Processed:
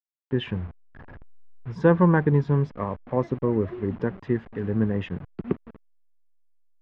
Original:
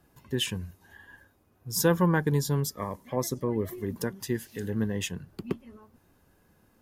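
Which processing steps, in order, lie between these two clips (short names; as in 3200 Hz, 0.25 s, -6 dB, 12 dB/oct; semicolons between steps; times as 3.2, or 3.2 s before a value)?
level-crossing sampler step -42 dBFS; Bessel low-pass 1600 Hz, order 4; gain +5.5 dB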